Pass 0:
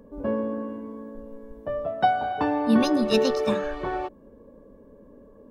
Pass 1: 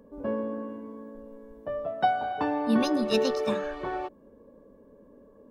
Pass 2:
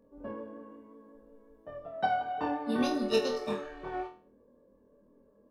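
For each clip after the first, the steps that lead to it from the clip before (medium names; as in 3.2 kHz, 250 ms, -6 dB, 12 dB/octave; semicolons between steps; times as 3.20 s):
bass shelf 110 Hz -7 dB; trim -3 dB
vibrato 5.5 Hz 28 cents; flutter echo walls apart 4.2 m, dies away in 0.38 s; upward expansion 1.5:1, over -33 dBFS; trim -4 dB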